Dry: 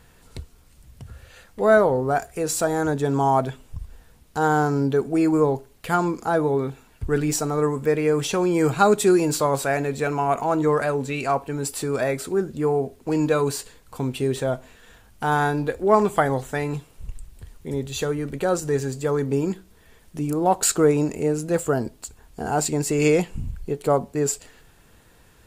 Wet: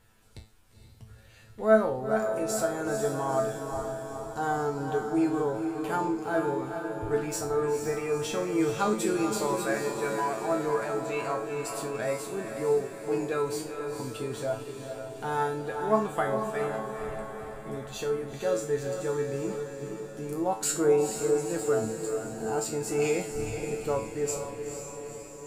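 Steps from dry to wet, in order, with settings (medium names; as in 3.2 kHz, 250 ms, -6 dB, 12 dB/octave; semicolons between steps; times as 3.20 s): 6.24–6.65 s: median filter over 5 samples; feedback comb 110 Hz, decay 0.37 s, harmonics all, mix 90%; on a send: echo that smears into a reverb 472 ms, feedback 60%, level -6 dB; on the sum: trim +1.5 dB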